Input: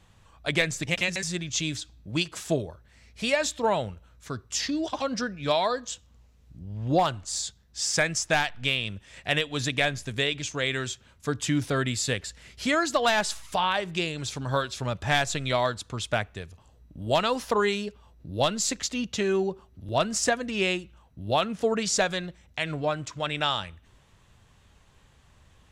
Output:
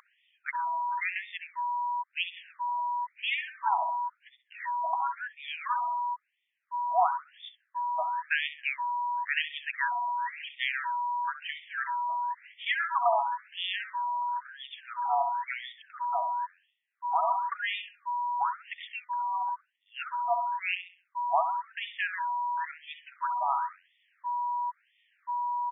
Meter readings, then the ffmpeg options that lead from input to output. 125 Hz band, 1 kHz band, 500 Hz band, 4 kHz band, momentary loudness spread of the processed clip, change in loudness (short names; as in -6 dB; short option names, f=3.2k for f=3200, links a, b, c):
under -40 dB, +4.0 dB, -12.5 dB, -9.5 dB, 11 LU, -4.0 dB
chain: -filter_complex "[0:a]aeval=exprs='val(0)+0.0282*sin(2*PI*970*n/s)':c=same,lowpass=f=3.3k:p=1,aemphasis=mode=production:type=50fm,asplit=2[a][b];[b]adelay=66,lowpass=f=2k:p=1,volume=-7.5dB,asplit=2[c][d];[d]adelay=66,lowpass=f=2k:p=1,volume=0.54,asplit=2[e][f];[f]adelay=66,lowpass=f=2k:p=1,volume=0.54,asplit=2[g][h];[h]adelay=66,lowpass=f=2k:p=1,volume=0.54,asplit=2[i][j];[j]adelay=66,lowpass=f=2k:p=1,volume=0.54,asplit=2[k][l];[l]adelay=66,lowpass=f=2k:p=1,volume=0.54,asplit=2[m][n];[n]adelay=66,lowpass=f=2k:p=1,volume=0.54[o];[c][e][g][i][k][m][o]amix=inputs=7:normalize=0[p];[a][p]amix=inputs=2:normalize=0,afftfilt=real='re*between(b*sr/1024,890*pow(2600/890,0.5+0.5*sin(2*PI*0.97*pts/sr))/1.41,890*pow(2600/890,0.5+0.5*sin(2*PI*0.97*pts/sr))*1.41)':imag='im*between(b*sr/1024,890*pow(2600/890,0.5+0.5*sin(2*PI*0.97*pts/sr))/1.41,890*pow(2600/890,0.5+0.5*sin(2*PI*0.97*pts/sr))*1.41)':win_size=1024:overlap=0.75"